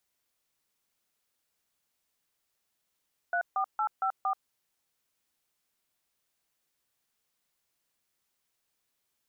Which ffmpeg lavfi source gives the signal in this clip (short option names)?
-f lavfi -i "aevalsrc='0.0376*clip(min(mod(t,0.23),0.083-mod(t,0.23))/0.002,0,1)*(eq(floor(t/0.23),0)*(sin(2*PI*697*mod(t,0.23))+sin(2*PI*1477*mod(t,0.23)))+eq(floor(t/0.23),1)*(sin(2*PI*770*mod(t,0.23))+sin(2*PI*1209*mod(t,0.23)))+eq(floor(t/0.23),2)*(sin(2*PI*852*mod(t,0.23))+sin(2*PI*1336*mod(t,0.23)))+eq(floor(t/0.23),3)*(sin(2*PI*770*mod(t,0.23))+sin(2*PI*1336*mod(t,0.23)))+eq(floor(t/0.23),4)*(sin(2*PI*770*mod(t,0.23))+sin(2*PI*1209*mod(t,0.23))))':d=1.15:s=44100"